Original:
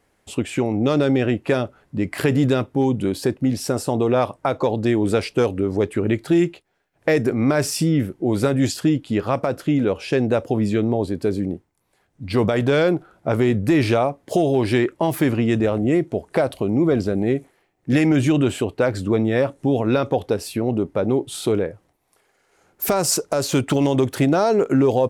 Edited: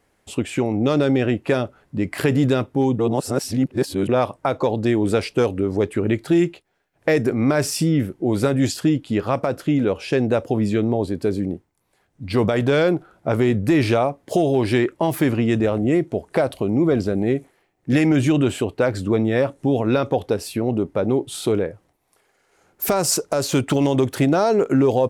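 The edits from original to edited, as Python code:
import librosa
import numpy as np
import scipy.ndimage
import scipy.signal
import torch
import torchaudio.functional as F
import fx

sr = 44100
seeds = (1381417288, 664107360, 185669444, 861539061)

y = fx.edit(x, sr, fx.reverse_span(start_s=2.99, length_s=1.1), tone=tone)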